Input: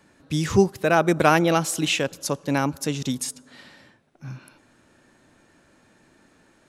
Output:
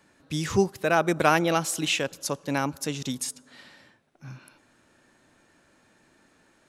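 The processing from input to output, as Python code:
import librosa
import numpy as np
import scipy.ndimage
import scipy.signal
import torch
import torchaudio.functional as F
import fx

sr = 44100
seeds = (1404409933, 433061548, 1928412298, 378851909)

y = fx.low_shelf(x, sr, hz=490.0, db=-4.0)
y = y * 10.0 ** (-2.0 / 20.0)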